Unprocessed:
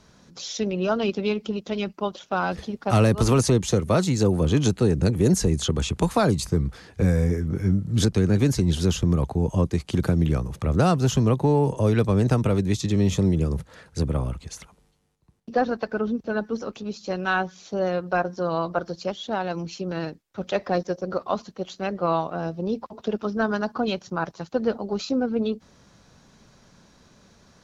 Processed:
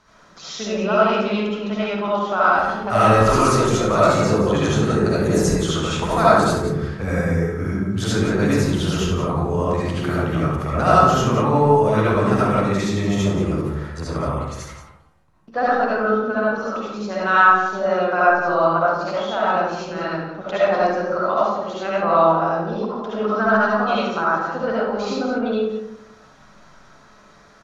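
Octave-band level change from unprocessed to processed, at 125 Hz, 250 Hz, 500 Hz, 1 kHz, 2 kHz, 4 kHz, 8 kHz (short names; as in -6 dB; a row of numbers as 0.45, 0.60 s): -0.5, +2.0, +6.0, +11.0, +10.0, +3.5, +1.0 dB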